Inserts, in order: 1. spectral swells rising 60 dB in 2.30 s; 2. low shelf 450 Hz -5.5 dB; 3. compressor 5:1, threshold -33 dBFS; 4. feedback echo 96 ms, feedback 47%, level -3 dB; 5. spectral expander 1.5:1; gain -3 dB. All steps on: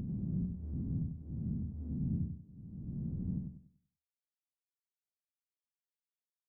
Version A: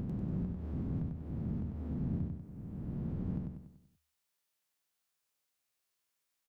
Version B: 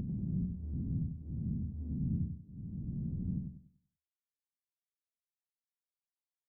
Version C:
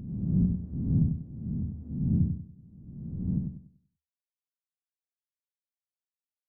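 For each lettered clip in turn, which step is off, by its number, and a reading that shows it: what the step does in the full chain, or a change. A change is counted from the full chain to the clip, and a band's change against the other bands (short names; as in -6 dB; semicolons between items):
5, momentary loudness spread change -3 LU; 2, momentary loudness spread change -3 LU; 3, crest factor change +2.5 dB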